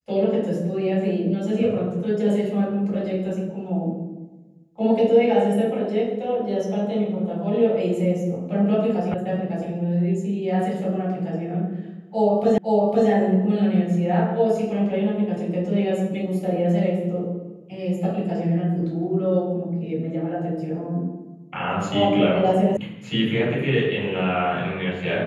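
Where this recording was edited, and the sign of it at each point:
9.14 s: sound stops dead
12.58 s: repeat of the last 0.51 s
22.77 s: sound stops dead

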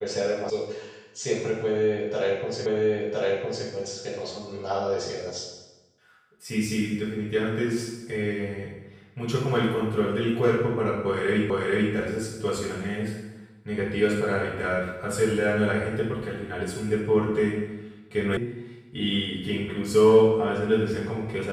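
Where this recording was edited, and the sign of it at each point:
0.50 s: sound stops dead
2.66 s: repeat of the last 1.01 s
11.50 s: repeat of the last 0.44 s
18.37 s: sound stops dead

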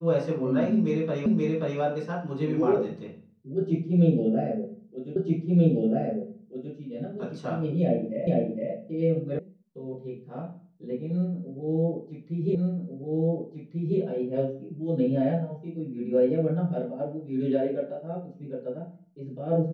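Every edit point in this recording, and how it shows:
1.26 s: repeat of the last 0.53 s
5.16 s: repeat of the last 1.58 s
8.27 s: repeat of the last 0.46 s
9.39 s: sound stops dead
12.55 s: repeat of the last 1.44 s

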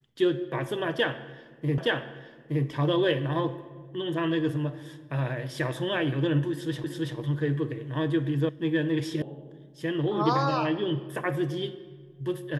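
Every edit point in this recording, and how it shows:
1.78 s: repeat of the last 0.87 s
6.84 s: repeat of the last 0.33 s
8.49 s: sound stops dead
9.22 s: sound stops dead

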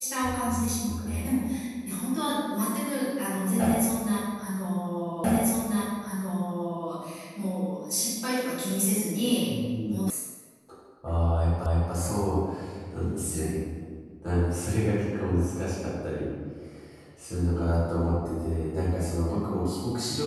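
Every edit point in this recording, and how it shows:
5.24 s: repeat of the last 1.64 s
10.10 s: sound stops dead
11.66 s: repeat of the last 0.29 s

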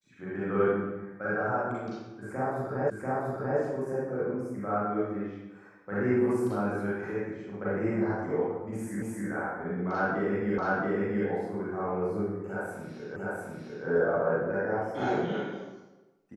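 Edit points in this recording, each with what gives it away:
2.90 s: repeat of the last 0.69 s
9.02 s: repeat of the last 0.26 s
10.58 s: repeat of the last 0.68 s
13.16 s: repeat of the last 0.7 s

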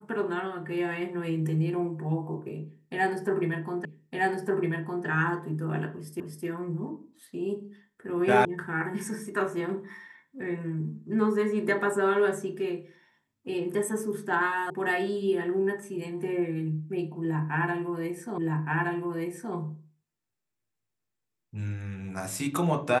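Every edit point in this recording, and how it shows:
3.85 s: repeat of the last 1.21 s
6.20 s: repeat of the last 0.26 s
8.45 s: sound stops dead
14.70 s: sound stops dead
18.38 s: repeat of the last 1.17 s

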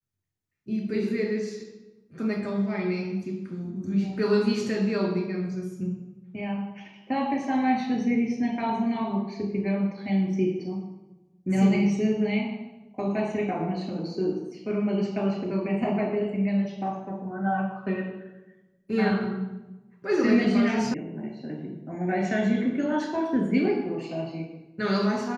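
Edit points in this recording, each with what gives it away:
20.94 s: sound stops dead

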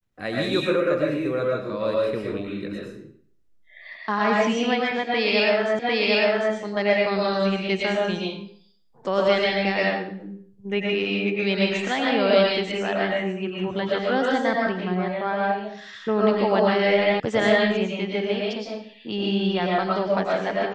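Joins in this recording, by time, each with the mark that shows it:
5.79 s: repeat of the last 0.75 s
17.20 s: sound stops dead

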